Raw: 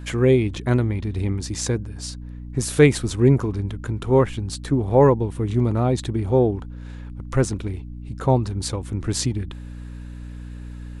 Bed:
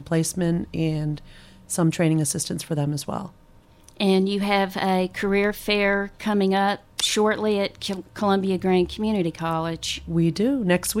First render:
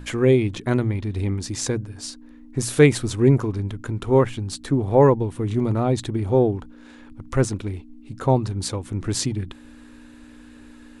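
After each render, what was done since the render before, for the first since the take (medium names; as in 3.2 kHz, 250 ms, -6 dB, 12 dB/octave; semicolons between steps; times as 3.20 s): hum notches 60/120/180 Hz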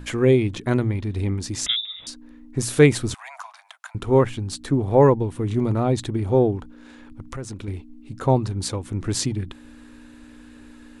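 1.66–2.07 s: frequency inversion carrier 3.7 kHz; 3.14–3.95 s: steep high-pass 660 Hz 96 dB/octave; 7.27–7.68 s: compression, threshold -29 dBFS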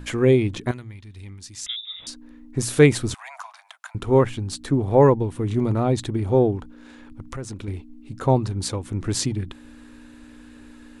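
0.71–1.87 s: amplifier tone stack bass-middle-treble 5-5-5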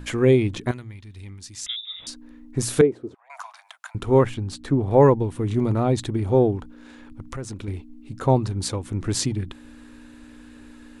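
2.81–3.30 s: band-pass filter 400 Hz, Q 3; 4.34–4.91 s: treble shelf 4.9 kHz -9 dB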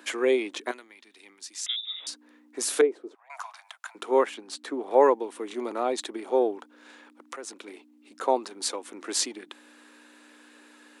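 Bessel high-pass 510 Hz, order 8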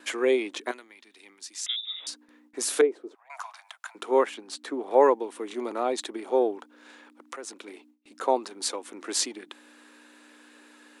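gate with hold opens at -49 dBFS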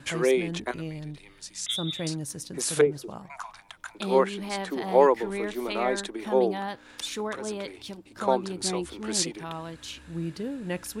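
add bed -12 dB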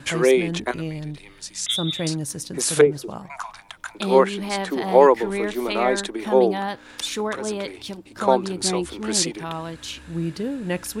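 trim +6 dB; peak limiter -2 dBFS, peak gain reduction 1.5 dB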